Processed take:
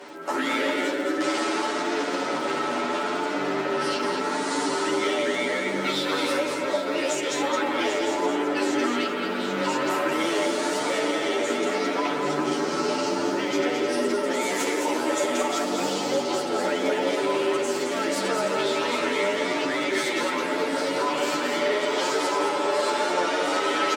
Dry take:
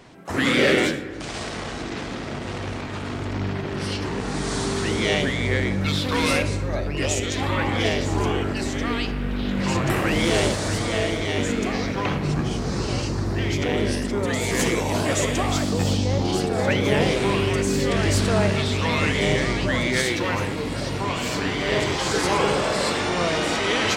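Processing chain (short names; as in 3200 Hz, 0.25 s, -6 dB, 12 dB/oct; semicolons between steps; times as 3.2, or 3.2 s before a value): one-sided clip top -15 dBFS; Chebyshev high-pass 220 Hz, order 3; tilt shelf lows -4 dB, about 780 Hz; comb 6.9 ms, depth 48%; small resonant body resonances 370/570/880/1300 Hz, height 12 dB, ringing for 25 ms; compressor, threshold -25 dBFS, peak gain reduction 16.5 dB; on a send: echo with dull and thin repeats by turns 0.393 s, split 1200 Hz, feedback 66%, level -6.5 dB; on the sum: crackle 40/s -38 dBFS; echo 0.216 s -5 dB; endless flanger 10.3 ms +0.8 Hz; gain +3.5 dB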